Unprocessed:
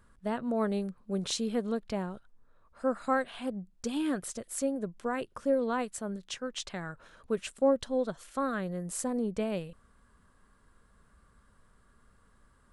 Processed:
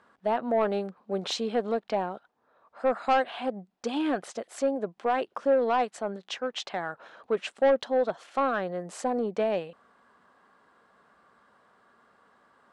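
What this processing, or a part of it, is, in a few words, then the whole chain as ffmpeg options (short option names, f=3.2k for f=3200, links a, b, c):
intercom: -af "highpass=310,lowpass=4.1k,equalizer=f=760:t=o:w=0.54:g=8,asoftclip=type=tanh:threshold=-22dB,volume=6dB"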